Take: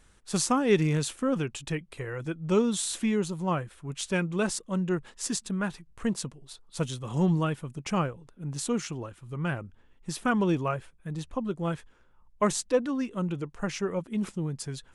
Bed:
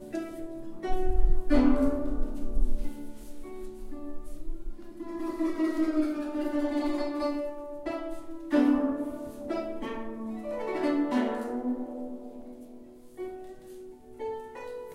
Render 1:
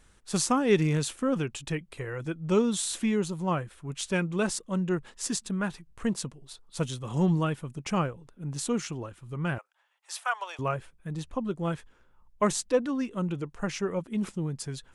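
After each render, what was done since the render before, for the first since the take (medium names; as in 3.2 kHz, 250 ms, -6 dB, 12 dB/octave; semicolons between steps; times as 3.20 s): 9.58–10.59 s: steep high-pass 660 Hz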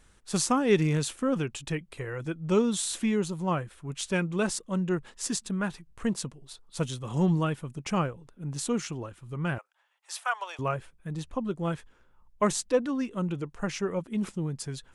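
no audible change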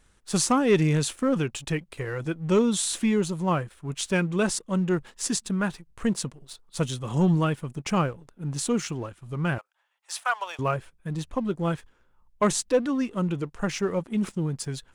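waveshaping leveller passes 1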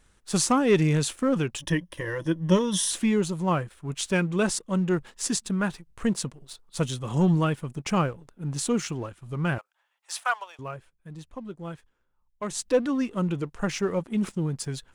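1.58–2.91 s: rippled EQ curve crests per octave 1.2, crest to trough 12 dB; 10.32–12.66 s: dip -10.5 dB, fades 0.15 s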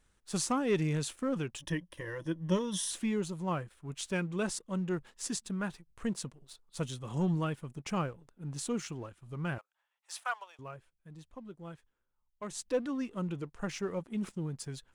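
trim -9 dB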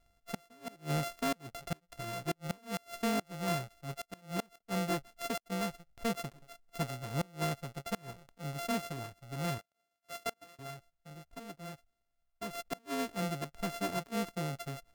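sorted samples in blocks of 64 samples; inverted gate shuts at -24 dBFS, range -29 dB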